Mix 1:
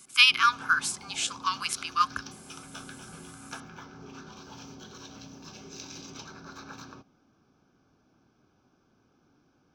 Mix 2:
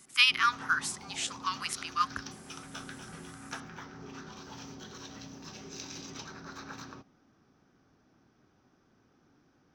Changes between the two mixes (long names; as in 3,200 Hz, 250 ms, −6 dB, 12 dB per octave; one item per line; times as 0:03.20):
speech −4.5 dB
master: remove Butterworth band-reject 1,900 Hz, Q 5.6